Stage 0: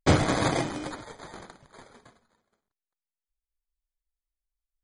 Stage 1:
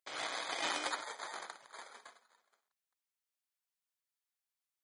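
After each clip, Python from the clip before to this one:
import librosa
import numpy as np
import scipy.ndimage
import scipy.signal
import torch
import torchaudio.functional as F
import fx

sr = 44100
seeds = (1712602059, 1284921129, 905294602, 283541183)

y = scipy.signal.sosfilt(scipy.signal.butter(2, 800.0, 'highpass', fs=sr, output='sos'), x)
y = fx.dynamic_eq(y, sr, hz=3300.0, q=1.0, threshold_db=-45.0, ratio=4.0, max_db=6)
y = fx.over_compress(y, sr, threshold_db=-36.0, ratio=-1.0)
y = y * librosa.db_to_amplitude(-3.0)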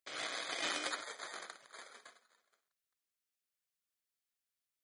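y = fx.peak_eq(x, sr, hz=890.0, db=-10.0, octaves=0.47)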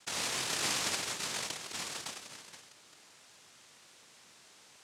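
y = fx.rider(x, sr, range_db=4, speed_s=2.0)
y = fx.noise_vocoder(y, sr, seeds[0], bands=1)
y = fx.env_flatten(y, sr, amount_pct=50)
y = y * librosa.db_to_amplitude(3.0)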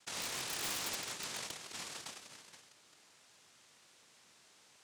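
y = (np.mod(10.0 ** (25.0 / 20.0) * x + 1.0, 2.0) - 1.0) / 10.0 ** (25.0 / 20.0)
y = y * librosa.db_to_amplitude(-5.5)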